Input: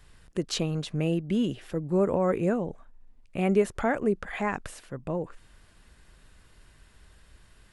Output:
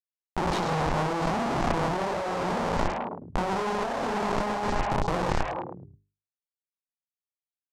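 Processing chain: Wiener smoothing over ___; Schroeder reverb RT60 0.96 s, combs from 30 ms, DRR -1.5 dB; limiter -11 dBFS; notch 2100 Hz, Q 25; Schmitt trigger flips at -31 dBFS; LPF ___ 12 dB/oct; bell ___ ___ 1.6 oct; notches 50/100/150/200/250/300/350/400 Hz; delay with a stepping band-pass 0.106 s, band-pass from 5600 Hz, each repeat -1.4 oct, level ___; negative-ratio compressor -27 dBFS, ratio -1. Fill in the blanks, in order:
41 samples, 7600 Hz, 870 Hz, +12.5 dB, -4 dB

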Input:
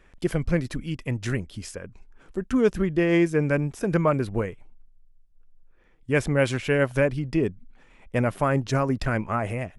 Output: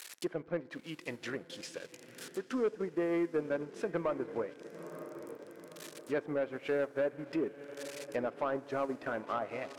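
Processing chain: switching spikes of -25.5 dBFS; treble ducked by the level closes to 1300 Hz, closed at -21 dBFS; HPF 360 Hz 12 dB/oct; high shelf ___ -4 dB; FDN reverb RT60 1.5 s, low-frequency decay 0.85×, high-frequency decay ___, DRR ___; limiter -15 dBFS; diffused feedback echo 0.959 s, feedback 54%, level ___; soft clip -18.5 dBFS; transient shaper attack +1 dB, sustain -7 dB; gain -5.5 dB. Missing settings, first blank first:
9700 Hz, 0.3×, 15.5 dB, -13 dB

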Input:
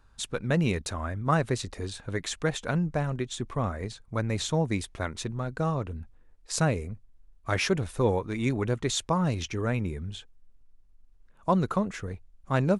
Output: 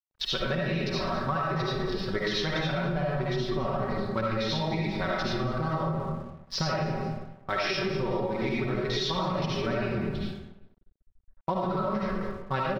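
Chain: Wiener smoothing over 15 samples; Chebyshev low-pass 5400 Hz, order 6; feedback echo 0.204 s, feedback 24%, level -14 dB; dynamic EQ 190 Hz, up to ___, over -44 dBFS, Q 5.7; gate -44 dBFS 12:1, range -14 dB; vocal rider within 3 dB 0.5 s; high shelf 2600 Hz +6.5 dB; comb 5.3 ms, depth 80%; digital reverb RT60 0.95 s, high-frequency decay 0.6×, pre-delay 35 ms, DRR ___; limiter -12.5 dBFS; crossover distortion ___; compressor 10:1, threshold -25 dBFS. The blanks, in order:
-7 dB, -6.5 dB, -55 dBFS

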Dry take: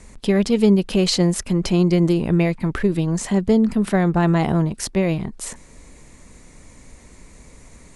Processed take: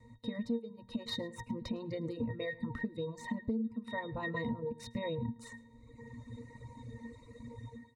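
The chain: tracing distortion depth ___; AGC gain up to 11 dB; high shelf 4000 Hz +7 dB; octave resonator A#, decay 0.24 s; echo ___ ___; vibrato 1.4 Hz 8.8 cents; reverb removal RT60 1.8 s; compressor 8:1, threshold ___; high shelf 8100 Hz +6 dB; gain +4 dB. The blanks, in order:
0.056 ms, 0.108 s, -11.5 dB, -37 dBFS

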